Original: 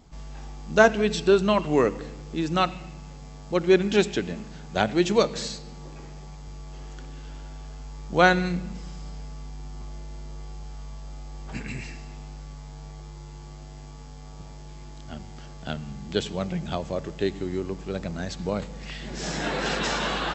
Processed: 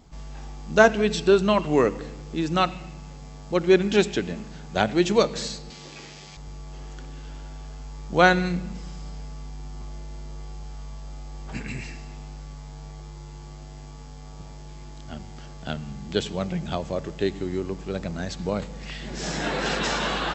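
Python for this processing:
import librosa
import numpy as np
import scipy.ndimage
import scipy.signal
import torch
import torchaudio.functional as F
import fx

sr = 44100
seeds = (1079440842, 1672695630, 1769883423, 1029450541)

y = fx.weighting(x, sr, curve='D', at=(5.7, 6.37))
y = y * librosa.db_to_amplitude(1.0)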